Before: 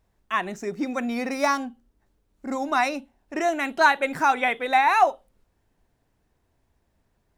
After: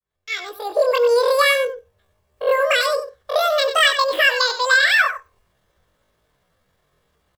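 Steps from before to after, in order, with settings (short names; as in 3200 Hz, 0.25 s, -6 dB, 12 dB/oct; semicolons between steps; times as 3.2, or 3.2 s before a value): opening faded in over 1.01 s; low shelf 120 Hz -8 dB; notches 60/120 Hz; comb 3.6 ms, depth 40%; in parallel at +0.5 dB: compressor 12:1, threshold -26 dBFS, peak gain reduction 14.5 dB; on the sum: pitch shift +12 st; dynamic EQ 520 Hz, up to +7 dB, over -36 dBFS, Q 1; on a send: echo 95 ms -11 dB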